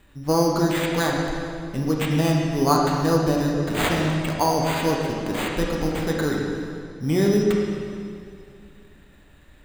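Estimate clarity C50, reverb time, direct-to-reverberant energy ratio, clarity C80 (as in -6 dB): 0.5 dB, 2.4 s, -2.0 dB, 2.0 dB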